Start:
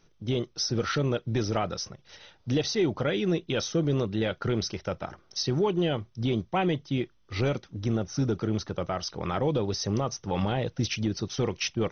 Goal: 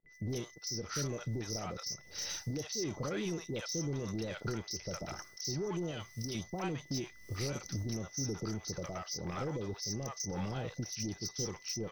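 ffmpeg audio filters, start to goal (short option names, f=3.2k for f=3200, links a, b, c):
-filter_complex "[0:a]agate=range=-33dB:threshold=-55dB:ratio=3:detection=peak,aexciter=amount=14.9:drive=3.2:freq=5k,dynaudnorm=f=160:g=3:m=17dB,alimiter=limit=-10.5dB:level=0:latency=1:release=266,acompressor=threshold=-28dB:ratio=6,asettb=1/sr,asplit=3[a][b][c];[a]atrim=end=5.914[d];[b]atrim=start=5.91:end=6.35,asetpts=PTS-STARTPTS,afade=t=in:d=0.004:c=qsin,afade=t=out:st=0.436:d=0.004:c=qsin,tiltshelf=f=1.4k:g=-5.5[e];[c]atrim=start=6.346[f];[d][e]acrossfade=d=0.004:c1=hsin:c2=qsin[g];[g][f]acrossfade=d=0.004:c1=qsin:c2=hsin,asoftclip=type=tanh:threshold=-26.5dB,aeval=exprs='val(0)+0.002*sin(2*PI*2000*n/s)':c=same,acrossover=split=690|4700[h][i][j];[i]adelay=60[k];[j]adelay=90[l];[h][k][l]amix=inputs=3:normalize=0,volume=-3.5dB"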